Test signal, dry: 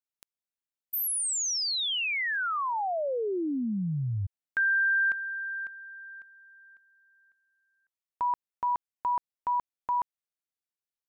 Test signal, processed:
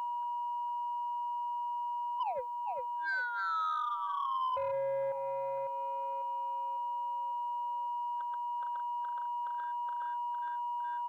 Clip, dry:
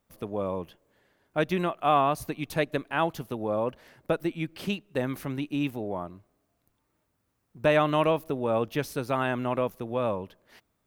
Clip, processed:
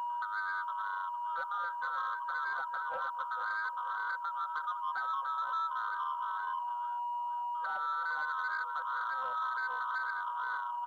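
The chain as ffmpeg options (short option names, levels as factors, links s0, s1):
-filter_complex "[0:a]afftfilt=real='real(if(lt(b,960),b+48*(1-2*mod(floor(b/48),2)),b),0)':imag='imag(if(lt(b,960),b+48*(1-2*mod(floor(b/48),2)),b),0)':win_size=2048:overlap=0.75,asplit=5[s0][s1][s2][s3][s4];[s1]adelay=458,afreqshift=-140,volume=0.501[s5];[s2]adelay=916,afreqshift=-280,volume=0.15[s6];[s3]adelay=1374,afreqshift=-420,volume=0.0452[s7];[s4]adelay=1832,afreqshift=-560,volume=0.0135[s8];[s0][s5][s6][s7][s8]amix=inputs=5:normalize=0,acompressor=mode=upward:threshold=0.00447:ratio=2.5:attack=1.1:release=741:knee=2.83:detection=peak,afftfilt=real='re*between(b*sr/4096,490,1600)':imag='im*between(b*sr/4096,490,1600)':win_size=4096:overlap=0.75,alimiter=limit=0.0708:level=0:latency=1:release=63,tiltshelf=f=650:g=-3,aecho=1:1:3.9:0.59,aeval=exprs='val(0)+0.0178*sin(2*PI*960*n/s)':c=same,acompressor=threshold=0.0251:ratio=2:attack=0.15:release=426:knee=6:detection=rms,adynamicequalizer=threshold=0.00316:dfrequency=1000:dqfactor=2.7:tfrequency=1000:tqfactor=2.7:attack=5:release=100:ratio=0.4:range=2.5:mode=boostabove:tftype=bell,asoftclip=type=tanh:threshold=0.0531,acrusher=bits=11:mix=0:aa=0.000001,volume=0.794"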